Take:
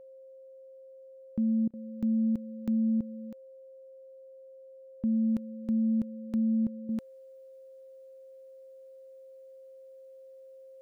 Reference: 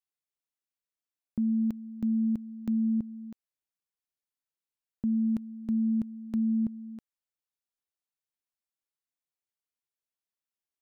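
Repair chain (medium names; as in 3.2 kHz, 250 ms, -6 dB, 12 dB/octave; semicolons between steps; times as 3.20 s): band-stop 530 Hz, Q 30; interpolate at 1.68 s, 54 ms; trim 0 dB, from 6.89 s -11 dB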